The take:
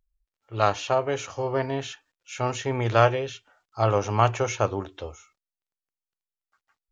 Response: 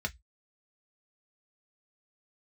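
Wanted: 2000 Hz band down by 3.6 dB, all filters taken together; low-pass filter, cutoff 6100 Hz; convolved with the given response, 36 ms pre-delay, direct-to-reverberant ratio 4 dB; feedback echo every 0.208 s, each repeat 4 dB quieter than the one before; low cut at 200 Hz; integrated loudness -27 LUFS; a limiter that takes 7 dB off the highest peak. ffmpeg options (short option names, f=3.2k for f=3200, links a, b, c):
-filter_complex "[0:a]highpass=200,lowpass=6.1k,equalizer=f=2k:t=o:g=-5,alimiter=limit=-14dB:level=0:latency=1,aecho=1:1:208|416|624|832|1040|1248|1456|1664|1872:0.631|0.398|0.25|0.158|0.0994|0.0626|0.0394|0.0249|0.0157,asplit=2[a][b];[1:a]atrim=start_sample=2205,adelay=36[c];[b][c]afir=irnorm=-1:irlink=0,volume=-8dB[d];[a][d]amix=inputs=2:normalize=0,volume=-0.5dB"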